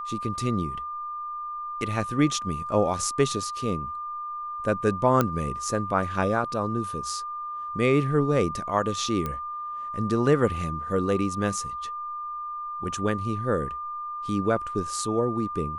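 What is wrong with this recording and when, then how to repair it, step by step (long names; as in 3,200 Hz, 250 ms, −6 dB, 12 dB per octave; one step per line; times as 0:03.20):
whistle 1,200 Hz −31 dBFS
0:05.21: click −8 dBFS
0:09.26: click −16 dBFS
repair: click removal
notch filter 1,200 Hz, Q 30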